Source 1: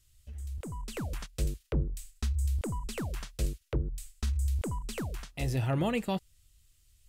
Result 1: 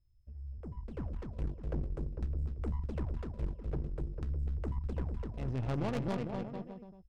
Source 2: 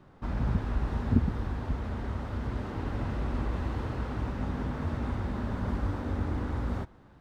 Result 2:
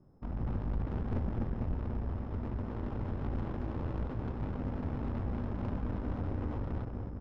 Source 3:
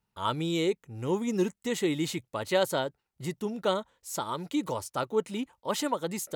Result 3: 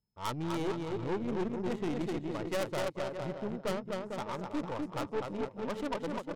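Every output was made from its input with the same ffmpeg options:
ffmpeg -i in.wav -af "aecho=1:1:250|450|610|738|840.4:0.631|0.398|0.251|0.158|0.1,aeval=exprs='val(0)+0.00178*sin(2*PI*5200*n/s)':channel_layout=same,adynamicsmooth=sensitivity=2:basefreq=560,aeval=exprs='(tanh(22.4*val(0)+0.55)-tanh(0.55))/22.4':channel_layout=same,aemphasis=mode=production:type=cd,volume=-1.5dB" out.wav

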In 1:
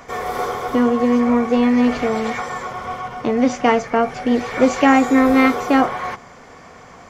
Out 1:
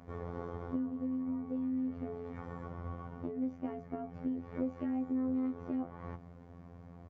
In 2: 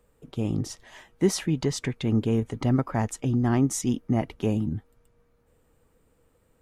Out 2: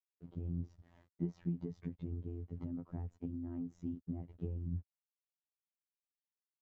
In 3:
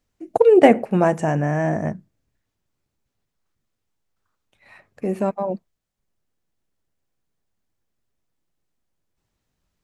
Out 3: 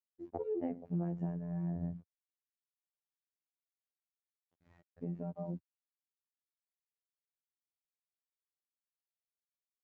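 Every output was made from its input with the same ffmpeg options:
ffmpeg -i in.wav -af "aresample=16000,acrusher=bits=7:mix=0:aa=0.000001,aresample=44100,bandpass=frequency=100:width_type=q:width=1.2:csg=0,acompressor=threshold=-36dB:ratio=5,afftfilt=real='hypot(re,im)*cos(PI*b)':imag='0':win_size=2048:overlap=0.75,volume=4dB" out.wav

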